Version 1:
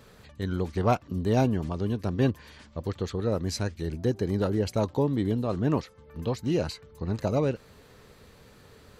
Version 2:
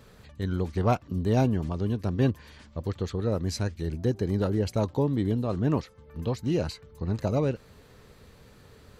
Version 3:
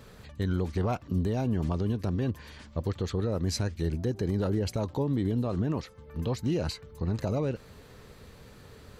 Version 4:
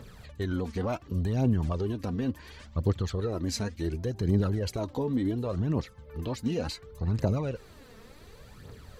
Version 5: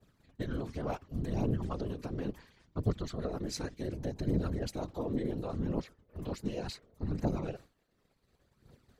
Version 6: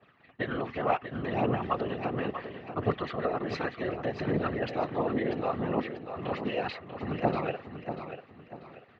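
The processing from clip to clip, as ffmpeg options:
ffmpeg -i in.wav -af "lowshelf=frequency=170:gain=4.5,volume=-1.5dB" out.wav
ffmpeg -i in.wav -af "alimiter=limit=-22.5dB:level=0:latency=1:release=75,volume=2.5dB" out.wav
ffmpeg -i in.wav -af "aphaser=in_gain=1:out_gain=1:delay=4.6:decay=0.55:speed=0.69:type=triangular,volume=-1.5dB" out.wav
ffmpeg -i in.wav -af "agate=range=-33dB:threshold=-38dB:ratio=3:detection=peak,tremolo=f=180:d=0.889,afftfilt=real='hypot(re,im)*cos(2*PI*random(0))':imag='hypot(re,im)*sin(2*PI*random(1))':win_size=512:overlap=0.75,volume=4dB" out.wav
ffmpeg -i in.wav -filter_complex "[0:a]highpass=170,equalizer=frequency=190:width_type=q:width=4:gain=-6,equalizer=frequency=290:width_type=q:width=4:gain=-4,equalizer=frequency=750:width_type=q:width=4:gain=7,equalizer=frequency=1200:width_type=q:width=4:gain=8,equalizer=frequency=1900:width_type=q:width=4:gain=9,equalizer=frequency=2700:width_type=q:width=4:gain=8,lowpass=frequency=3400:width=0.5412,lowpass=frequency=3400:width=1.3066,asplit=2[link_01][link_02];[link_02]aecho=0:1:640|1280|1920|2560:0.355|0.124|0.0435|0.0152[link_03];[link_01][link_03]amix=inputs=2:normalize=0,volume=6.5dB" out.wav

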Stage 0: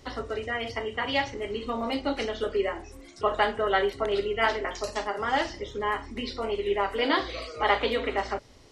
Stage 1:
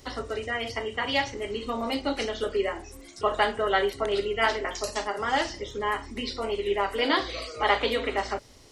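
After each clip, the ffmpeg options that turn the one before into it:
ffmpeg -i in.wav -af "highshelf=frequency=6300:gain=11" out.wav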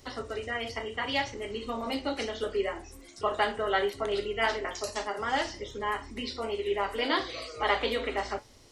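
ffmpeg -i in.wav -af "flanger=delay=8.4:depth=4.6:regen=-72:speed=0.69:shape=sinusoidal,volume=1dB" out.wav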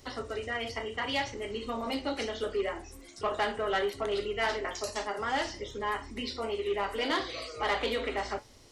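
ffmpeg -i in.wav -af "asoftclip=type=tanh:threshold=-22dB" out.wav

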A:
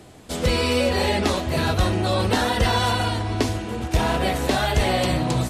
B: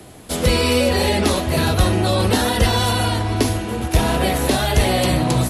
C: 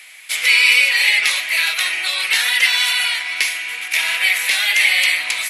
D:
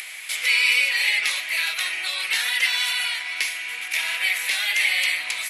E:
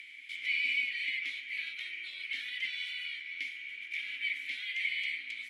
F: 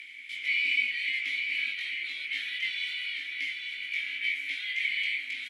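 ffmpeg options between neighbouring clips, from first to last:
ffmpeg -i in.wav -filter_complex "[0:a]equalizer=frequency=11000:width=5.1:gain=14.5,acrossover=split=220|540|2900[link_01][link_02][link_03][link_04];[link_03]alimiter=limit=-21.5dB:level=0:latency=1[link_05];[link_01][link_02][link_05][link_04]amix=inputs=4:normalize=0,volume=4.5dB" out.wav
ffmpeg -i in.wav -af "highpass=frequency=2200:width_type=q:width=6.1,volume=2.5dB" out.wav
ffmpeg -i in.wav -af "acompressor=mode=upward:threshold=-19dB:ratio=2.5,volume=-6.5dB" out.wav
ffmpeg -i in.wav -filter_complex "[0:a]aeval=exprs='0.266*(abs(mod(val(0)/0.266+3,4)-2)-1)':channel_layout=same,asplit=3[link_01][link_02][link_03];[link_01]bandpass=frequency=270:width_type=q:width=8,volume=0dB[link_04];[link_02]bandpass=frequency=2290:width_type=q:width=8,volume=-6dB[link_05];[link_03]bandpass=frequency=3010:width_type=q:width=8,volume=-9dB[link_06];[link_04][link_05][link_06]amix=inputs=3:normalize=0,volume=-3.5dB" out.wav
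ffmpeg -i in.wav -af "flanger=delay=18:depth=4.1:speed=0.88,aecho=1:1:838:0.501,volume=7dB" out.wav

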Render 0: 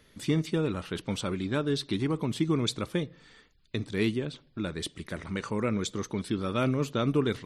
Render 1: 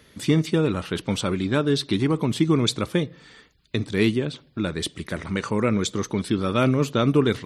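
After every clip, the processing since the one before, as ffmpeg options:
ffmpeg -i in.wav -af "highpass=48,volume=7dB" out.wav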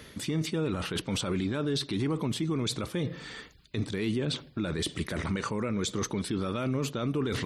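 ffmpeg -i in.wav -af "areverse,acompressor=threshold=-27dB:ratio=6,areverse,alimiter=level_in=3.5dB:limit=-24dB:level=0:latency=1:release=25,volume=-3.5dB,volume=6dB" out.wav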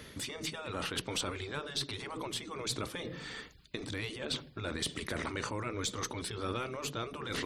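ffmpeg -i in.wav -af "afftfilt=real='re*lt(hypot(re,im),0.141)':imag='im*lt(hypot(re,im),0.141)':win_size=1024:overlap=0.75,aeval=exprs='0.0891*(cos(1*acos(clip(val(0)/0.0891,-1,1)))-cos(1*PI/2))+0.00355*(cos(4*acos(clip(val(0)/0.0891,-1,1)))-cos(4*PI/2))':channel_layout=same,volume=-1dB" out.wav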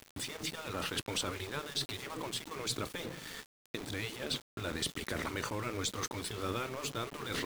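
ffmpeg -i in.wav -af "aeval=exprs='val(0)*gte(abs(val(0)),0.00794)':channel_layout=same" out.wav

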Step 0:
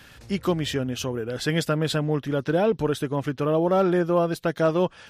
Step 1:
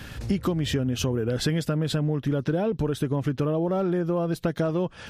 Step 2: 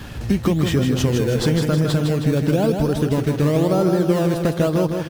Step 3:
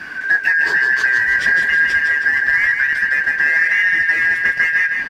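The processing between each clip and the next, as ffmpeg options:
ffmpeg -i in.wav -filter_complex "[0:a]lowshelf=frequency=350:gain=9.5,asplit=2[link_01][link_02];[link_02]alimiter=limit=-16dB:level=0:latency=1,volume=-1.5dB[link_03];[link_01][link_03]amix=inputs=2:normalize=0,acompressor=threshold=-21dB:ratio=12" out.wav
ffmpeg -i in.wav -filter_complex "[0:a]asplit=2[link_01][link_02];[link_02]acrusher=samples=15:mix=1:aa=0.000001:lfo=1:lforange=15:lforate=0.98,volume=-4.5dB[link_03];[link_01][link_03]amix=inputs=2:normalize=0,aecho=1:1:158|316|474|632|790|948|1106:0.531|0.292|0.161|0.0883|0.0486|0.0267|0.0147,volume=2dB" out.wav
ffmpeg -i in.wav -filter_complex "[0:a]afftfilt=real='real(if(lt(b,272),68*(eq(floor(b/68),0)*1+eq(floor(b/68),1)*0+eq(floor(b/68),2)*3+eq(floor(b/68),3)*2)+mod(b,68),b),0)':imag='imag(if(lt(b,272),68*(eq(floor(b/68),0)*1+eq(floor(b/68),1)*0+eq(floor(b/68),2)*3+eq(floor(b/68),3)*2)+mod(b,68),b),0)':win_size=2048:overlap=0.75,asplit=2[link_01][link_02];[link_02]highpass=frequency=720:poles=1,volume=8dB,asoftclip=type=tanh:threshold=-4.5dB[link_03];[link_01][link_03]amix=inputs=2:normalize=0,lowpass=frequency=1300:poles=1,volume=-6dB,asplit=2[link_04][link_05];[link_05]adelay=24,volume=-11.5dB[link_06];[link_04][link_06]amix=inputs=2:normalize=0,volume=3.5dB" out.wav

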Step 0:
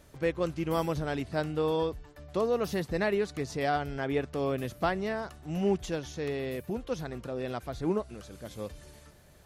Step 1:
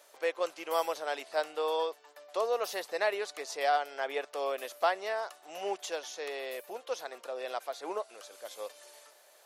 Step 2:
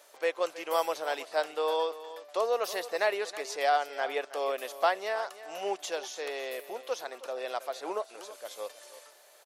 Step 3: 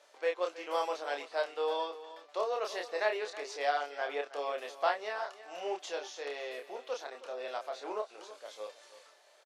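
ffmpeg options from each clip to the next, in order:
ffmpeg -i in.wav -af "highpass=frequency=550:width=0.5412,highpass=frequency=550:width=1.3066,equalizer=frequency=1700:width_type=o:width=1.4:gain=-3.5,volume=3.5dB" out.wav
ffmpeg -i in.wav -af "aecho=1:1:320:0.178,volume=2dB" out.wav
ffmpeg -i in.wav -filter_complex "[0:a]highpass=220,lowpass=6000,asplit=2[link_01][link_02];[link_02]adelay=28,volume=-4dB[link_03];[link_01][link_03]amix=inputs=2:normalize=0,volume=-5dB" out.wav

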